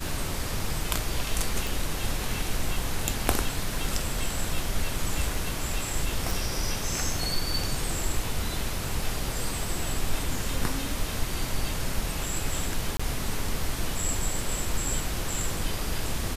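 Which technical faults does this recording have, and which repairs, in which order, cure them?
1.67 s: pop
6.31 s: pop
12.97–12.99 s: dropout 25 ms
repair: de-click; interpolate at 12.97 s, 25 ms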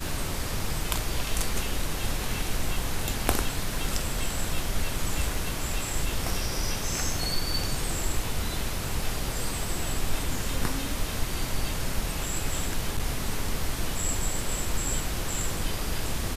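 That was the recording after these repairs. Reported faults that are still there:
nothing left

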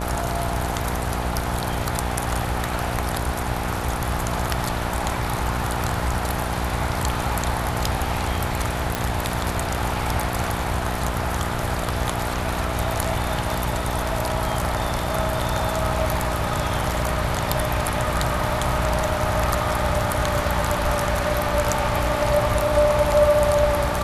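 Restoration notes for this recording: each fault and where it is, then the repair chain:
buzz 60 Hz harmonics 17 -28 dBFS
8.95 s: pop -6 dBFS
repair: de-click; de-hum 60 Hz, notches 17

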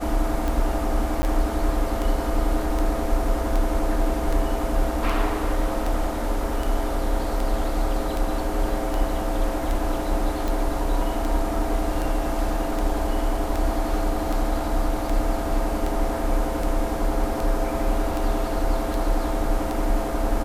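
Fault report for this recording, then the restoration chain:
tick 78 rpm
1.22–1.23 s: dropout 10 ms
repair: de-click; interpolate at 1.22 s, 10 ms

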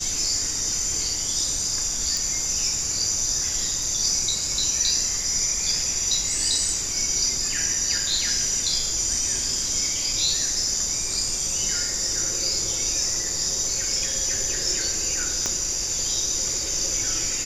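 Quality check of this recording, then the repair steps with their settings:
2.17 s: pop
15.46 s: pop -11 dBFS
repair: de-click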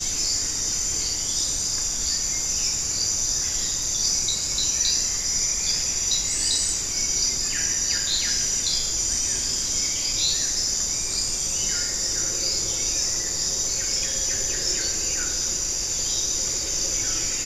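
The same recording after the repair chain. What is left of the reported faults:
15.46 s: pop

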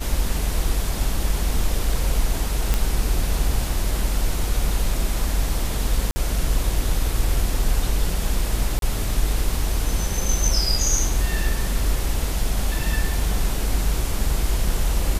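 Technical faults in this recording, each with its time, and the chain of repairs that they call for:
2.74 s: pop -6 dBFS
6.11–6.16 s: dropout 50 ms
8.79–8.82 s: dropout 32 ms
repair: de-click; interpolate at 6.11 s, 50 ms; interpolate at 8.79 s, 32 ms

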